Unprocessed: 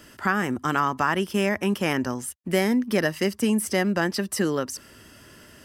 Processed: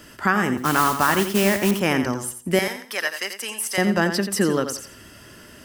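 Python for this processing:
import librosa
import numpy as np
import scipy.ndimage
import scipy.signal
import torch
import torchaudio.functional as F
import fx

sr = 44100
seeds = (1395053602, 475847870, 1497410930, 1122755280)

y = fx.mod_noise(x, sr, seeds[0], snr_db=10, at=(0.57, 1.71))
y = fx.highpass(y, sr, hz=1000.0, slope=12, at=(2.59, 3.78))
y = fx.echo_feedback(y, sr, ms=87, feedback_pct=26, wet_db=-9)
y = y * 10.0 ** (3.5 / 20.0)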